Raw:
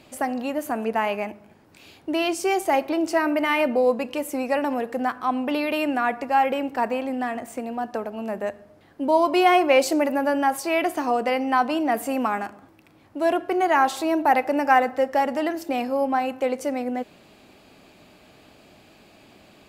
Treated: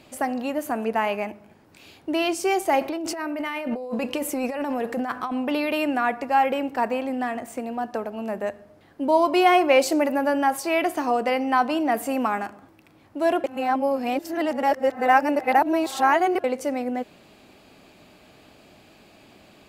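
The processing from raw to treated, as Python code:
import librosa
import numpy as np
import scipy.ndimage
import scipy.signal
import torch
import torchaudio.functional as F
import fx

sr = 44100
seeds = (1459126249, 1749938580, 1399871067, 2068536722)

y = fx.over_compress(x, sr, threshold_db=-28.0, ratio=-1.0, at=(2.81, 5.32))
y = fx.edit(y, sr, fx.reverse_span(start_s=13.44, length_s=3.0), tone=tone)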